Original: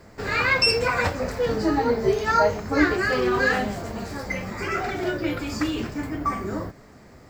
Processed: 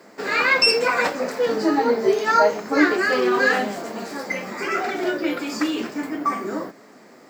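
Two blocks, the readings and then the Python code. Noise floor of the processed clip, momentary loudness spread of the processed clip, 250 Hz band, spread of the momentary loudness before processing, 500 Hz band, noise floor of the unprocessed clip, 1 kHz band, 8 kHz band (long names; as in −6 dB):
−48 dBFS, 12 LU, +2.0 dB, 11 LU, +3.0 dB, −49 dBFS, +3.0 dB, +3.0 dB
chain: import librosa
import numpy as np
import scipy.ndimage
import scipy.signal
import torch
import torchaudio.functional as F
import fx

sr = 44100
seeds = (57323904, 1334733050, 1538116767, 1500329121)

y = scipy.signal.sosfilt(scipy.signal.butter(4, 220.0, 'highpass', fs=sr, output='sos'), x)
y = y * librosa.db_to_amplitude(3.0)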